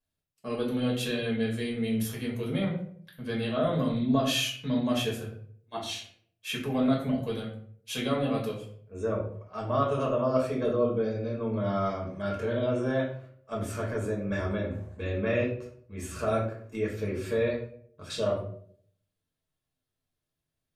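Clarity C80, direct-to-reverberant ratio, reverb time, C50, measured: 9.5 dB, -4.0 dB, 0.60 s, 6.0 dB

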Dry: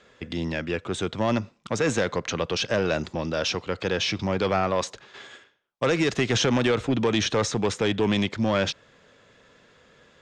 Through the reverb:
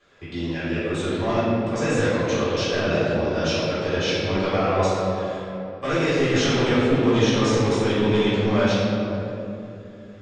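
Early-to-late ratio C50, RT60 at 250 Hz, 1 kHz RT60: -4.0 dB, 3.6 s, 2.5 s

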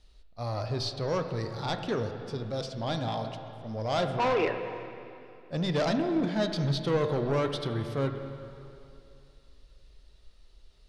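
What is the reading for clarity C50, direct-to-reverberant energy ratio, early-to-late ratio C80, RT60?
7.0 dB, 6.0 dB, 8.0 dB, 2.7 s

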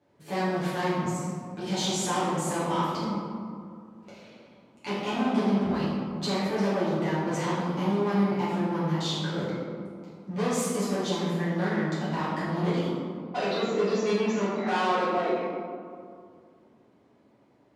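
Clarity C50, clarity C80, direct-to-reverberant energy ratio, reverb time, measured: -2.0 dB, 0.5 dB, -12.0 dB, 2.3 s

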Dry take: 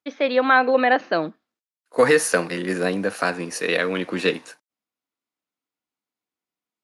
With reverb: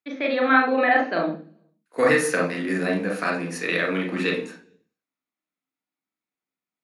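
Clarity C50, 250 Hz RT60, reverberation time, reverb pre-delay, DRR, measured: 7.0 dB, 0.75 s, 0.45 s, 34 ms, 0.5 dB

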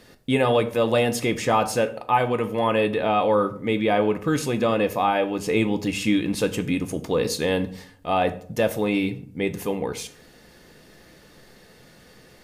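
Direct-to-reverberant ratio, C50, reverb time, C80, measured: 7.5 dB, 15.0 dB, 0.55 s, 18.5 dB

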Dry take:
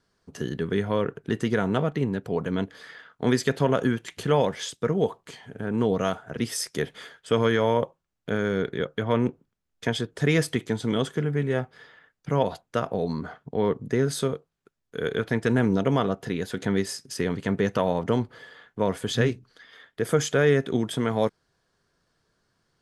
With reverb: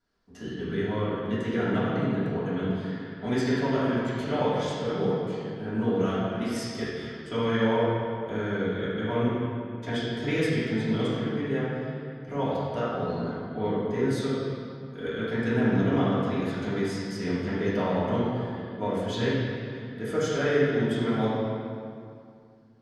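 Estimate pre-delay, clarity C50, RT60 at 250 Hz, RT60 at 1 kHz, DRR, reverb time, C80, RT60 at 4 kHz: 3 ms, -3.5 dB, 2.7 s, 2.3 s, -12.0 dB, 2.3 s, -1.0 dB, 1.7 s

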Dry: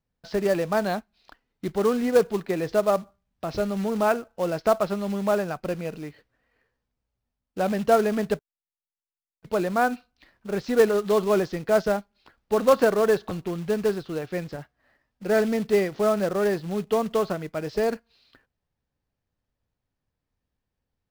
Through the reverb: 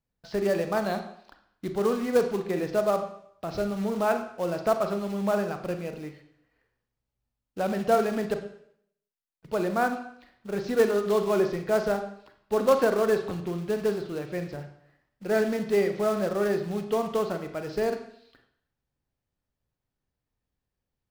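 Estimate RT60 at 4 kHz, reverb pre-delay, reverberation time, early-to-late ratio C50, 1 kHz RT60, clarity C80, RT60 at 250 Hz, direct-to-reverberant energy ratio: 0.65 s, 34 ms, 0.65 s, 9.0 dB, 0.65 s, 11.5 dB, 0.65 s, 6.5 dB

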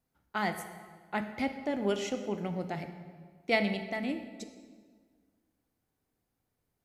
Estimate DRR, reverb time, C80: 7.5 dB, 1.7 s, 10.5 dB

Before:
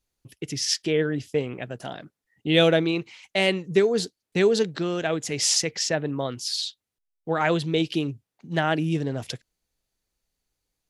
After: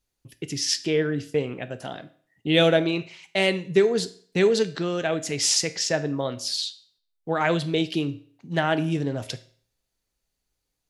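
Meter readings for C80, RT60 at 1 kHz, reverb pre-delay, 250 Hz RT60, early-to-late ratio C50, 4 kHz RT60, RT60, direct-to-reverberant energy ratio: 20.5 dB, 0.50 s, 7 ms, 0.50 s, 16.5 dB, 0.50 s, 0.50 s, 11.0 dB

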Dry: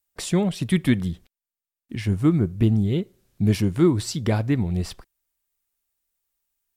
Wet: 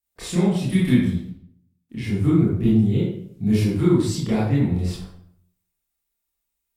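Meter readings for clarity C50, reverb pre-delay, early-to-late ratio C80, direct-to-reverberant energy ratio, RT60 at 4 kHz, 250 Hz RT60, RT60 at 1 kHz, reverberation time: 0.5 dB, 22 ms, 5.5 dB, -9.0 dB, 0.45 s, 0.75 s, 0.60 s, 0.65 s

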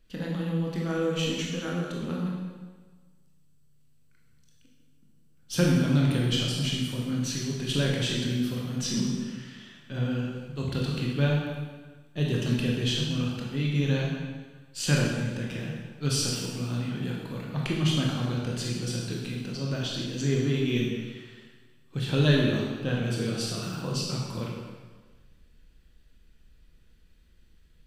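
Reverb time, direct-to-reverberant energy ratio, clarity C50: 1.4 s, -3.0 dB, 0.5 dB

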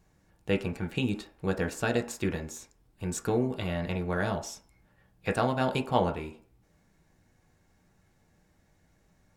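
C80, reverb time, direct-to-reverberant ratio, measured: 17.5 dB, 0.45 s, 3.0 dB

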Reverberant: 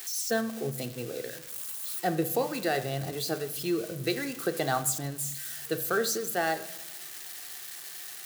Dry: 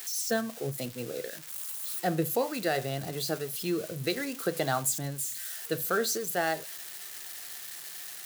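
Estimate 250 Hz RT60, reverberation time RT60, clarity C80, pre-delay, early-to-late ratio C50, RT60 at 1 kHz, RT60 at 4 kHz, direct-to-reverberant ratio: 1.5 s, 1.1 s, 16.0 dB, 3 ms, 14.0 dB, 1.1 s, 0.90 s, 10.5 dB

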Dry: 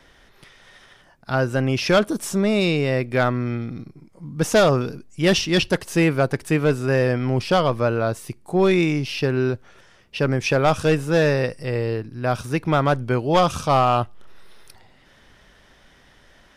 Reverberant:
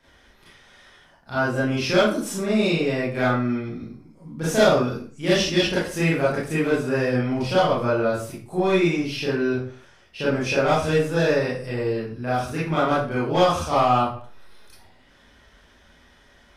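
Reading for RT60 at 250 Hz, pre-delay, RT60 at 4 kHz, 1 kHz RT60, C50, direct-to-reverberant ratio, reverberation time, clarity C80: 0.45 s, 27 ms, 0.35 s, 0.45 s, 2.5 dB, -9.5 dB, 0.45 s, 7.5 dB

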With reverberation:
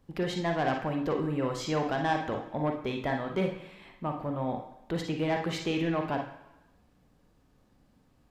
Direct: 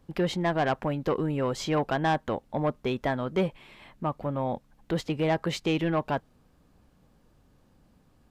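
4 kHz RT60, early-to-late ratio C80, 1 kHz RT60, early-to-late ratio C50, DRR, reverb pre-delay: 1.0 s, 10.0 dB, 1.0 s, 5.5 dB, 2.0 dB, 38 ms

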